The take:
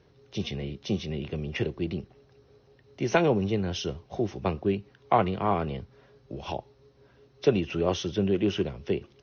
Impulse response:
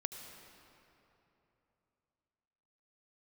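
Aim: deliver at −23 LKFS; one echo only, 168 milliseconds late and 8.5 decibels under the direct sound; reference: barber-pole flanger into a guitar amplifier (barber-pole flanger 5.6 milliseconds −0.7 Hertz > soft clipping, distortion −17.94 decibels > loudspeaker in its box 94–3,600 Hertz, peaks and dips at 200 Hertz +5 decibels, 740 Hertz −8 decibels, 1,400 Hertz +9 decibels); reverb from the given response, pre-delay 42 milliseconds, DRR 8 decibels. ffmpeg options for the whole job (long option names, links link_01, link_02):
-filter_complex "[0:a]aecho=1:1:168:0.376,asplit=2[link_01][link_02];[1:a]atrim=start_sample=2205,adelay=42[link_03];[link_02][link_03]afir=irnorm=-1:irlink=0,volume=-7.5dB[link_04];[link_01][link_04]amix=inputs=2:normalize=0,asplit=2[link_05][link_06];[link_06]adelay=5.6,afreqshift=-0.7[link_07];[link_05][link_07]amix=inputs=2:normalize=1,asoftclip=threshold=-18dB,highpass=94,equalizer=frequency=200:width_type=q:width=4:gain=5,equalizer=frequency=740:width_type=q:width=4:gain=-8,equalizer=frequency=1400:width_type=q:width=4:gain=9,lowpass=frequency=3600:width=0.5412,lowpass=frequency=3600:width=1.3066,volume=8.5dB"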